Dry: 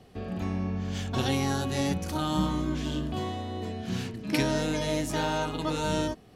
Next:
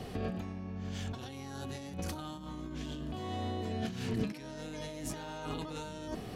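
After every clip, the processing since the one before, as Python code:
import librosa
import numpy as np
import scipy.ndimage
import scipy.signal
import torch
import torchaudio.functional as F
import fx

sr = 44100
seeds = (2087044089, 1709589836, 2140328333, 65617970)

y = fx.over_compress(x, sr, threshold_db=-41.0, ratio=-1.0)
y = F.gain(torch.from_numpy(y), 1.0).numpy()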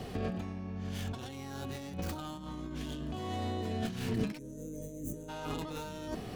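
y = fx.tracing_dist(x, sr, depth_ms=0.24)
y = fx.spec_box(y, sr, start_s=4.38, length_s=0.91, low_hz=610.0, high_hz=5900.0, gain_db=-24)
y = F.gain(torch.from_numpy(y), 1.0).numpy()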